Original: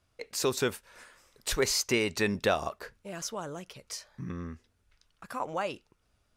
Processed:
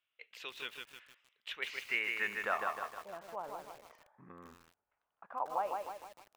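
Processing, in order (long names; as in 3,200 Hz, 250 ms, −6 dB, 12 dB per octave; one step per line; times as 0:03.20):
flat-topped bell 6,700 Hz −15 dB
band-pass filter sweep 3,100 Hz → 820 Hz, 0:01.49–0:02.98
feedback echo at a low word length 154 ms, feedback 55%, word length 9 bits, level −3.5 dB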